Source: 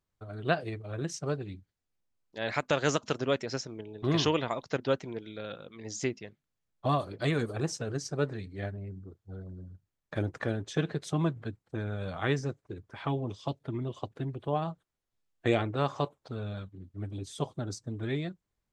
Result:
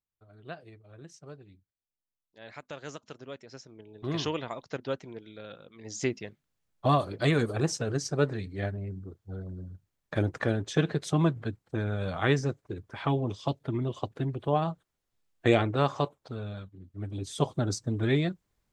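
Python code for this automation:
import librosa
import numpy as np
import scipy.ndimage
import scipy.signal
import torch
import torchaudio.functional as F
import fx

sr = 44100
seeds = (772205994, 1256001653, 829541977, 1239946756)

y = fx.gain(x, sr, db=fx.line((3.45, -14.0), (4.0, -4.5), (5.74, -4.5), (6.15, 4.0), (15.75, 4.0), (16.77, -2.5), (17.51, 7.0)))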